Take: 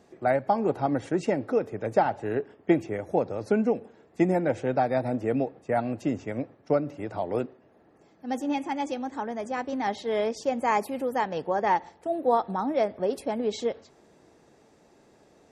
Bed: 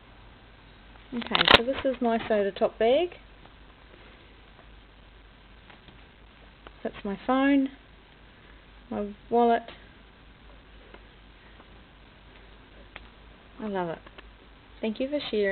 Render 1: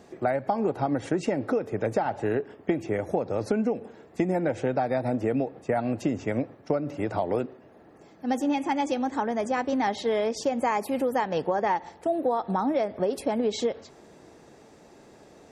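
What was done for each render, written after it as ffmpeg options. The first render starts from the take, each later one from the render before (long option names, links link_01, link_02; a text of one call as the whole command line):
ffmpeg -i in.wav -filter_complex "[0:a]asplit=2[link_01][link_02];[link_02]alimiter=limit=-18.5dB:level=0:latency=1:release=183,volume=1dB[link_03];[link_01][link_03]amix=inputs=2:normalize=0,acompressor=threshold=-22dB:ratio=6" out.wav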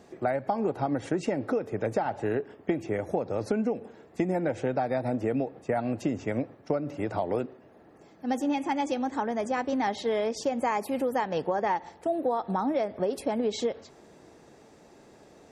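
ffmpeg -i in.wav -af "volume=-2dB" out.wav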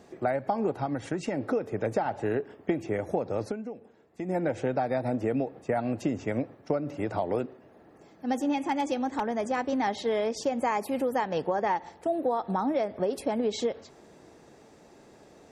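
ffmpeg -i in.wav -filter_complex "[0:a]asettb=1/sr,asplit=3[link_01][link_02][link_03];[link_01]atrim=end=0.764[link_04];[link_02]atrim=start=0.76:end=1.34,asetpts=PTS-STARTPTS,afade=type=in:duration=0.004:curve=qsin,afade=type=out:start_time=0.576:duration=0.004:curve=qsin,equalizer=frequency=430:width=0.81:gain=-4.5[link_05];[link_03]atrim=start=1.336[link_06];[link_04][link_05]acrossfade=duration=0.004:curve1=hsin:curve2=qsin[link_07];[link_07][link_06]acrossfade=duration=0.004:curve1=qsin:curve2=hsin,asettb=1/sr,asplit=3[link_08][link_09][link_10];[link_08]atrim=end=8.594[link_11];[link_09]atrim=start=8.59:end=9.56,asetpts=PTS-STARTPTS,afade=type=in:duration=0.004:curve=qsin,afade=type=out:start_time=0.966:duration=0.004:curve=qsin,aeval=exprs='0.112*(abs(mod(val(0)/0.112+3,4)-2)-1)':channel_layout=same[link_12];[link_10]atrim=start=9.556[link_13];[link_11][link_12]acrossfade=duration=0.004:curve1=hsin:curve2=qsin[link_14];[link_14][link_13]acrossfade=duration=0.004:curve1=qsin:curve2=hsin,asplit=3[link_15][link_16][link_17];[link_15]atrim=end=3.57,asetpts=PTS-STARTPTS,afade=type=out:start_time=3.41:duration=0.16:silence=0.316228[link_18];[link_16]atrim=start=3.57:end=4.2,asetpts=PTS-STARTPTS,volume=-10dB[link_19];[link_17]atrim=start=4.2,asetpts=PTS-STARTPTS,afade=type=in:duration=0.16:silence=0.316228[link_20];[link_18][link_19][link_20]concat=n=3:v=0:a=1" out.wav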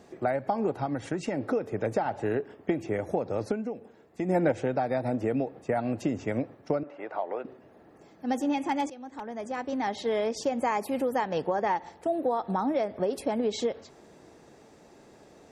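ffmpeg -i in.wav -filter_complex "[0:a]asettb=1/sr,asplit=3[link_01][link_02][link_03];[link_01]atrim=end=6.834[link_04];[link_02]atrim=start=6.83:end=7.45,asetpts=PTS-STARTPTS,afade=type=in:duration=0.004:curve=qsin,afade=type=out:start_time=0.616:duration=0.004:curve=qsin,highpass=570,lowpass=2200[link_05];[link_03]atrim=start=7.446[link_06];[link_04][link_05]acrossfade=duration=0.004:curve1=hsin:curve2=qsin[link_07];[link_07][link_06]acrossfade=duration=0.004:curve1=qsin:curve2=hsin,asplit=4[link_08][link_09][link_10][link_11];[link_08]atrim=end=3.502[link_12];[link_09]atrim=start=3.498:end=4.522,asetpts=PTS-STARTPTS,volume=4dB[link_13];[link_10]atrim=start=4.518:end=8.9,asetpts=PTS-STARTPTS,afade=type=out:start_time=4.378:duration=0.004:curve=hsin:silence=0.141254[link_14];[link_11]atrim=start=8.9,asetpts=PTS-STARTPTS,afade=type=in:duration=1.27:silence=0.141254[link_15];[link_12][link_13]acrossfade=duration=0.004:curve1=hsin:curve2=hsin[link_16];[link_14][link_15]concat=n=2:v=0:a=1[link_17];[link_16][link_17]acrossfade=duration=0.004:curve1=hsin:curve2=hsin" out.wav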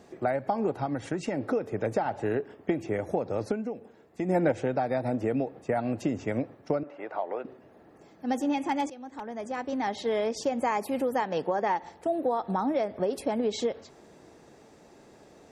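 ffmpeg -i in.wav -filter_complex "[0:a]asettb=1/sr,asplit=3[link_01][link_02][link_03];[link_01]atrim=end=11.224[link_04];[link_02]atrim=start=11.22:end=11.81,asetpts=PTS-STARTPTS,afade=type=in:duration=0.004:curve=qsin,afade=type=out:start_time=0.586:duration=0.004:curve=qsin,highpass=140[link_05];[link_03]atrim=start=11.806[link_06];[link_04][link_05]acrossfade=duration=0.004:curve1=hsin:curve2=qsin[link_07];[link_07][link_06]acrossfade=duration=0.004:curve1=qsin:curve2=hsin" out.wav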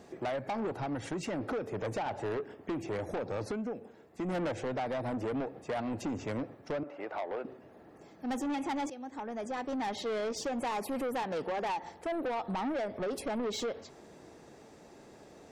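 ffmpeg -i in.wav -af "asoftclip=type=tanh:threshold=-30.5dB" out.wav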